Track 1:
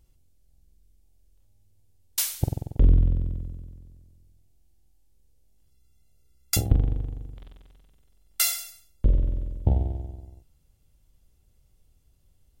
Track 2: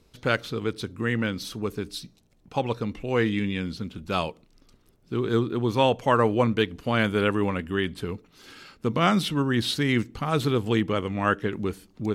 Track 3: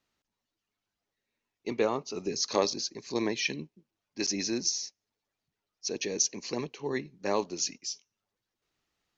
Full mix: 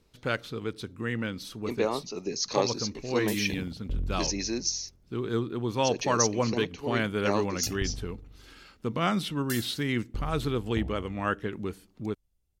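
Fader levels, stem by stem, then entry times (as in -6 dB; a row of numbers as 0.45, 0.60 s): -14.0, -5.5, 0.0 dB; 1.10, 0.00, 0.00 s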